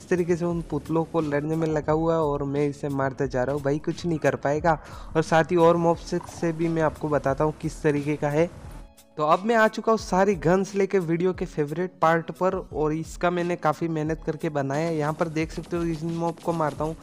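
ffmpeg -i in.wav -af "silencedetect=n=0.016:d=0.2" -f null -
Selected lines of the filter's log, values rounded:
silence_start: 8.83
silence_end: 9.17 | silence_duration: 0.35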